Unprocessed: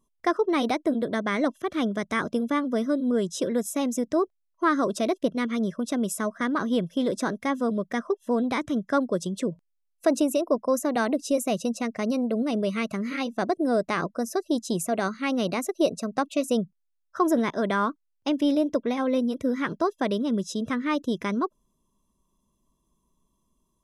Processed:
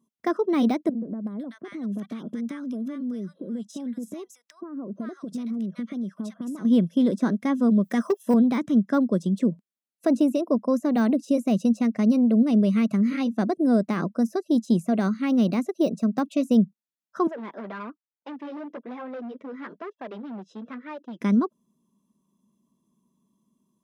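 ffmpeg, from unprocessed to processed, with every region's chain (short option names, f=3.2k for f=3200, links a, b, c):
-filter_complex "[0:a]asettb=1/sr,asplit=3[a][b][c];[a]atrim=end=0.894[d];[b]atrim=start=0.89:end=6.65,asetpts=PTS-STARTPTS,afade=t=in:d=0.004:c=qsin,afade=t=out:st=5.756:d=0.004:c=qsin,acompressor=threshold=-33dB:ratio=16:attack=3.2:release=140:knee=1:detection=peak,acrossover=split=1100[e][f];[f]adelay=380[g];[e][g]amix=inputs=2:normalize=0,atrim=end_sample=254016[h];[c]atrim=start=6.646[i];[d][h]acrossfade=d=0.004:c1=hsin:c2=qsin[j];[j][i]acrossfade=d=0.004:c1=qsin:c2=hsin,asettb=1/sr,asplit=3[k][l][m];[k]atrim=end=7.844[n];[l]atrim=start=7.84:end=8.34,asetpts=PTS-STARTPTS,afade=t=in:d=0.004:c=qsin,afade=t=out:st=0.496:d=0.004:c=qsin,aemphasis=mode=production:type=riaa,acontrast=84,asoftclip=type=hard:threshold=-14dB[o];[m]atrim=start=8.336[p];[n][o]acrossfade=d=0.004:c1=hsin:c2=qsin[q];[q][p]acrossfade=d=0.004:c1=qsin:c2=hsin,asettb=1/sr,asplit=3[r][s][t];[r]atrim=end=17.274[u];[s]atrim=start=17.27:end=21.21,asetpts=PTS-STARTPTS,afade=t=in:d=0.004:c=qsin,afade=t=out:st=3.936:d=0.004:c=qsin,flanger=delay=1.1:depth=9.8:regen=-11:speed=1.1:shape=sinusoidal,volume=28dB,asoftclip=hard,volume=-28dB,highpass=500,lowpass=2.2k[v];[t]atrim=start=21.206[w];[u][v]acrossfade=d=0.004:c1=hsin:c2=qsin[x];[x][w]acrossfade=d=0.004:c1=qsin:c2=hsin,deesser=0.9,highpass=140,equalizer=f=210:t=o:w=1:g=14,volume=-3.5dB"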